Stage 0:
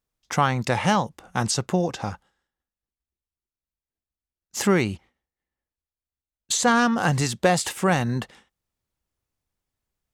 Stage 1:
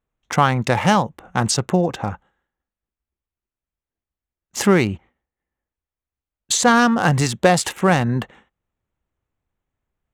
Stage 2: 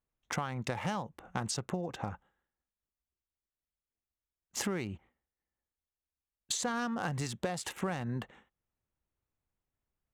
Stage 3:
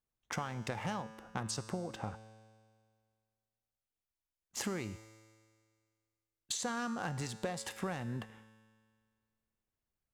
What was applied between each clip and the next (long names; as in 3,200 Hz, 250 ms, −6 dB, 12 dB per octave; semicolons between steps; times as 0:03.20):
adaptive Wiener filter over 9 samples; level +5 dB
downward compressor 12 to 1, threshold −22 dBFS, peak gain reduction 13.5 dB; level −9 dB
tuned comb filter 110 Hz, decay 1.9 s, mix 70%; level +6.5 dB